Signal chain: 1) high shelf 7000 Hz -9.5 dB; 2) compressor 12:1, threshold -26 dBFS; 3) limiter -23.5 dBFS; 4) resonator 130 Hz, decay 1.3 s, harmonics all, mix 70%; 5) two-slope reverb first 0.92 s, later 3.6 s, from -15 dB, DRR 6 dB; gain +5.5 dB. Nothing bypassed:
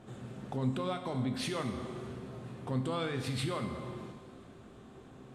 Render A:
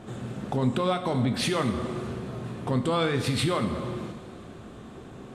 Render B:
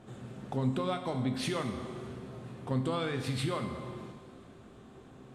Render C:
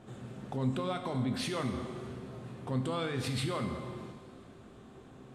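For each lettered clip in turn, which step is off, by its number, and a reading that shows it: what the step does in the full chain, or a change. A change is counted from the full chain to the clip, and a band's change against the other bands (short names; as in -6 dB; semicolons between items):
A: 4, loudness change +8.5 LU; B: 3, momentary loudness spread change +2 LU; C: 2, mean gain reduction 3.0 dB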